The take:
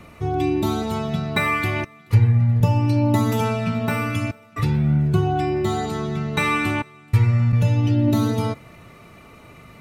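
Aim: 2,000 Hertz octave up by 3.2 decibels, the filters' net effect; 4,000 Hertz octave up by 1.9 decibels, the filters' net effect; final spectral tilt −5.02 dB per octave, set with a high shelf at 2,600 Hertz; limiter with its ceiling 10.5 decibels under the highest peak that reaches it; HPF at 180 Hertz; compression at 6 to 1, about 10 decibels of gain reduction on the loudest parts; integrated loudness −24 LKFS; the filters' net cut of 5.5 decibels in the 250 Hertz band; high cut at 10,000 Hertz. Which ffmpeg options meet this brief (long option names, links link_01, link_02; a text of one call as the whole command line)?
ffmpeg -i in.wav -af "highpass=180,lowpass=10000,equalizer=frequency=250:width_type=o:gain=-5.5,equalizer=frequency=2000:width_type=o:gain=5,highshelf=frequency=2600:gain=-5.5,equalizer=frequency=4000:width_type=o:gain=5,acompressor=threshold=-27dB:ratio=6,volume=9.5dB,alimiter=limit=-15.5dB:level=0:latency=1" out.wav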